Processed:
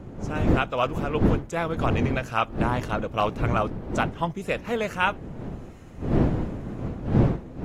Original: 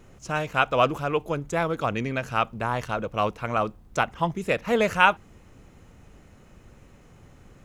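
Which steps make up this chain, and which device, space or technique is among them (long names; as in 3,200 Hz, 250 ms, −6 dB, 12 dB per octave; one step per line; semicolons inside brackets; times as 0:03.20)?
smartphone video outdoors (wind on the microphone 260 Hz −24 dBFS; automatic gain control gain up to 11.5 dB; level −7.5 dB; AAC 48 kbit/s 44,100 Hz)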